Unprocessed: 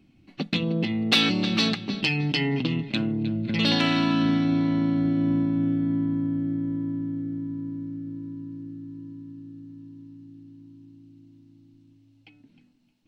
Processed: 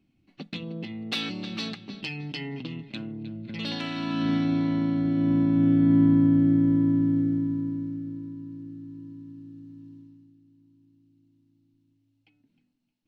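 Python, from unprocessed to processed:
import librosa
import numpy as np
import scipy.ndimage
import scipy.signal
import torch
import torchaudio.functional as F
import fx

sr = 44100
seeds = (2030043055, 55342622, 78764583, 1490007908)

y = fx.gain(x, sr, db=fx.line((3.93, -10.0), (4.33, -2.0), (5.05, -2.0), (6.03, 7.0), (7.2, 7.0), (8.36, -2.0), (9.94, -2.0), (10.38, -12.0)))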